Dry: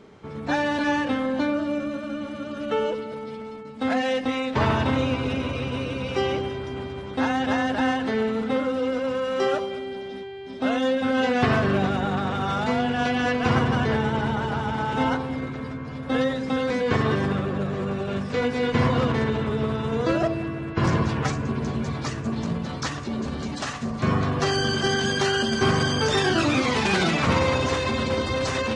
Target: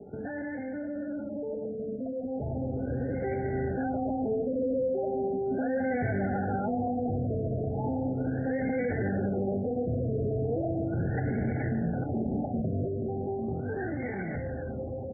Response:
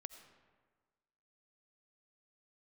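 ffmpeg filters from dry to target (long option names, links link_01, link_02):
-filter_complex "[0:a]highpass=43,bandreject=frequency=73.24:width_type=h:width=4,bandreject=frequency=146.48:width_type=h:width=4,bandreject=frequency=219.72:width_type=h:width=4,atempo=1.9,acrossover=split=140|3000[link_01][link_02][link_03];[link_02]acompressor=threshold=-26dB:ratio=6[link_04];[link_01][link_04][link_03]amix=inputs=3:normalize=0,asuperstop=centerf=1100:order=20:qfactor=1.9,aecho=1:1:147|294|441|588:0.178|0.0782|0.0344|0.0151,acrossover=split=110|970[link_05][link_06][link_07];[link_07]asoftclip=type=tanh:threshold=-28.5dB[link_08];[link_05][link_06][link_08]amix=inputs=3:normalize=0,alimiter=level_in=8dB:limit=-24dB:level=0:latency=1:release=178,volume=-8dB,dynaudnorm=framelen=460:gausssize=11:maxgain=7dB,afftfilt=real='re*lt(b*sr/1024,700*pow(2300/700,0.5+0.5*sin(2*PI*0.37*pts/sr)))':imag='im*lt(b*sr/1024,700*pow(2300/700,0.5+0.5*sin(2*PI*0.37*pts/sr)))':win_size=1024:overlap=0.75,volume=3.5dB"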